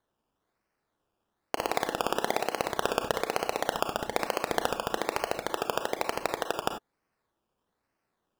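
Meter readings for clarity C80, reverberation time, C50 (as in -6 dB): 14.0 dB, no single decay rate, 9.0 dB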